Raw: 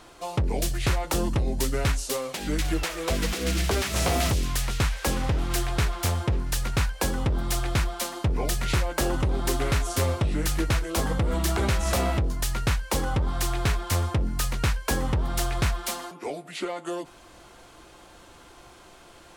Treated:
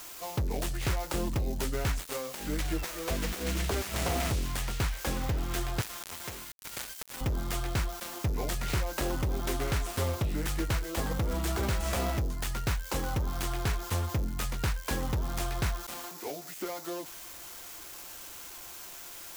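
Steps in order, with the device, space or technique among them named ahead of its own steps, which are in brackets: 5.81–7.21 s: tilt EQ +4.5 dB/octave; budget class-D amplifier (dead-time distortion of 0.15 ms; zero-crossing glitches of -23 dBFS); trim -5.5 dB

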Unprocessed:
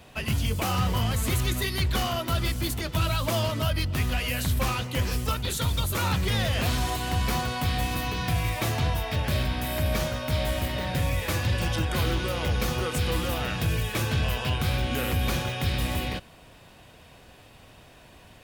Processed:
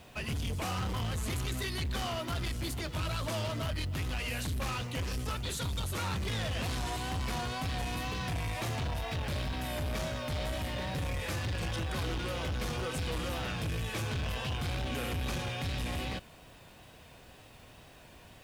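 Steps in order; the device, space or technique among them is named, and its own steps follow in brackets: compact cassette (saturation -27.5 dBFS, distortion -10 dB; low-pass 11 kHz 12 dB/octave; wow and flutter; white noise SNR 33 dB); trim -3 dB

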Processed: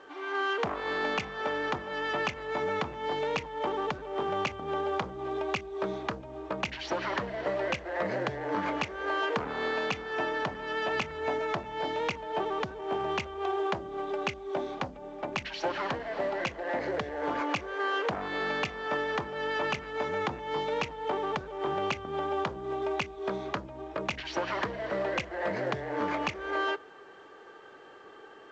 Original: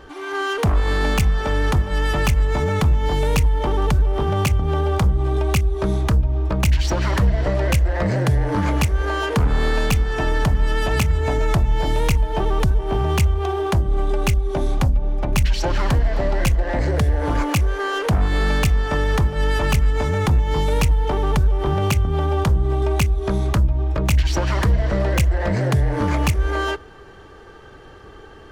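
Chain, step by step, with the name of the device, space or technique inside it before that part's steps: telephone (band-pass 350–3600 Hz; trim -5.5 dB; A-law 128 kbps 16 kHz)

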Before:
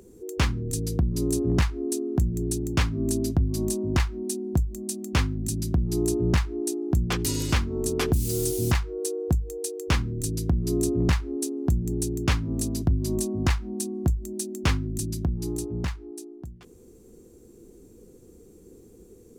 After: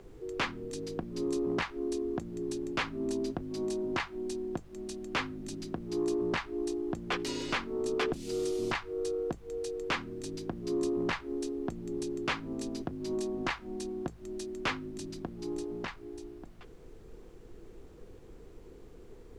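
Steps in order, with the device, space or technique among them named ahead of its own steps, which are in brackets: aircraft cabin announcement (band-pass 370–3500 Hz; saturation -21.5 dBFS, distortion -19 dB; brown noise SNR 15 dB)

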